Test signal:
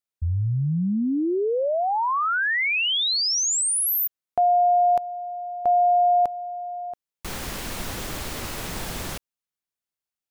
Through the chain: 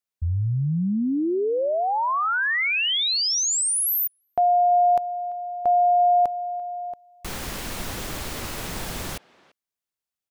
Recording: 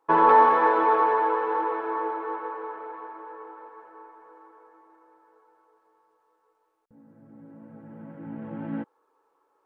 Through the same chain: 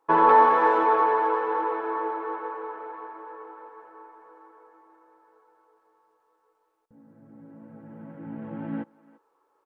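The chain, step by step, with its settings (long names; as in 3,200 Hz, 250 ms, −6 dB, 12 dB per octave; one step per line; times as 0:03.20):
far-end echo of a speakerphone 340 ms, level −21 dB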